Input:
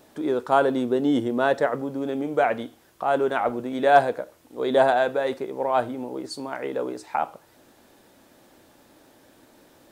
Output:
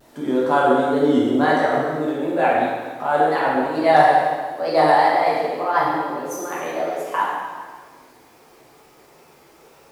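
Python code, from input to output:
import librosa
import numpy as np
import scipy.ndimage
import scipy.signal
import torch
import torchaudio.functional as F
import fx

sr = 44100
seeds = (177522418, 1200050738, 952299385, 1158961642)

y = fx.pitch_glide(x, sr, semitones=6.5, runs='starting unshifted')
y = fx.wow_flutter(y, sr, seeds[0], rate_hz=2.1, depth_cents=120.0)
y = fx.rev_plate(y, sr, seeds[1], rt60_s=1.6, hf_ratio=0.9, predelay_ms=0, drr_db=-6.0)
y = y * librosa.db_to_amplitude(-1.0)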